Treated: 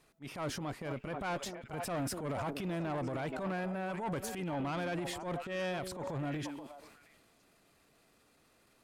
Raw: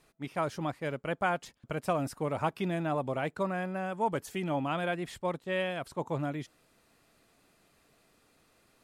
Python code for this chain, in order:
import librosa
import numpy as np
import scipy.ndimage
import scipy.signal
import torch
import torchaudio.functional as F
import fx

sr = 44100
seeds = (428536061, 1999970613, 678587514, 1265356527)

y = fx.echo_stepped(x, sr, ms=240, hz=290.0, octaves=1.4, feedback_pct=70, wet_db=-9.0)
y = fx.transient(y, sr, attack_db=-10, sustain_db=8)
y = fx.tube_stage(y, sr, drive_db=30.0, bias=0.25)
y = F.gain(torch.from_numpy(y), -1.0).numpy()